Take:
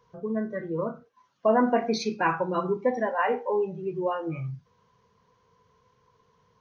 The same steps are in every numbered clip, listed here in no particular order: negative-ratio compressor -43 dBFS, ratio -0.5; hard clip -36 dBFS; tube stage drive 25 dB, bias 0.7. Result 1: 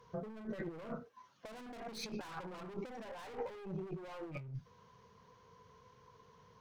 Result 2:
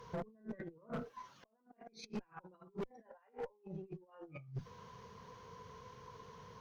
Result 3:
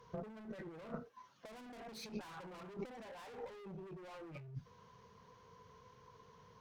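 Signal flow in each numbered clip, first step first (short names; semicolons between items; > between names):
tube stage > hard clip > negative-ratio compressor; negative-ratio compressor > tube stage > hard clip; hard clip > negative-ratio compressor > tube stage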